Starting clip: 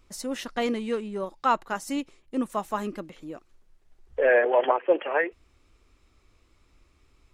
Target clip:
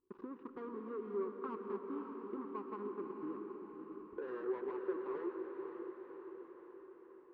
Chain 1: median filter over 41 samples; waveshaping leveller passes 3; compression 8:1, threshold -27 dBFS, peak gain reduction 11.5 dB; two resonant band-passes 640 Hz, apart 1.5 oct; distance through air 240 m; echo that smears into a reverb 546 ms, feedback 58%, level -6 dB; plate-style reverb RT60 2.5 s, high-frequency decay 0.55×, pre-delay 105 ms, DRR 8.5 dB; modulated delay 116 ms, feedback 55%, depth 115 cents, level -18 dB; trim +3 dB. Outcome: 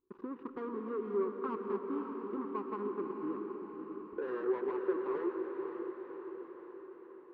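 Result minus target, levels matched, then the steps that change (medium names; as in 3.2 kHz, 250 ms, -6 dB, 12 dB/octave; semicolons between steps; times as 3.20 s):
compression: peak gain reduction -5.5 dB
change: compression 8:1, threshold -33.5 dBFS, peak gain reduction 17 dB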